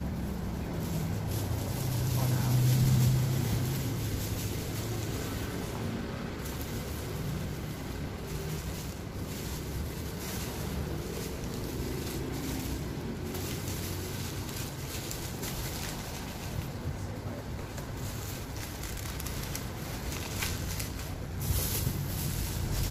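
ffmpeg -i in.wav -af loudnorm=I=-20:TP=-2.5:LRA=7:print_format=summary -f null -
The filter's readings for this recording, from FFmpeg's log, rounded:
Input Integrated:    -34.1 LUFS
Input True Peak:     -15.5 dBTP
Input LRA:             8.0 LU
Input Threshold:     -44.1 LUFS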